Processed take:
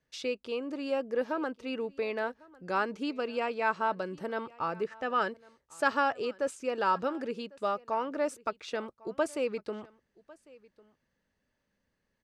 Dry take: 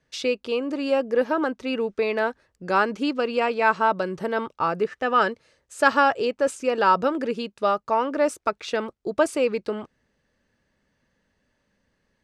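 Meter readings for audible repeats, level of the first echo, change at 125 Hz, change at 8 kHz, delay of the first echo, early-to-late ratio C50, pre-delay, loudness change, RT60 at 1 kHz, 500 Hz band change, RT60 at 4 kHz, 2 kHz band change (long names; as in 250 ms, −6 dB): 1, −23.5 dB, −9.0 dB, −9.0 dB, 1,100 ms, no reverb audible, no reverb audible, −9.0 dB, no reverb audible, −9.0 dB, no reverb audible, −9.0 dB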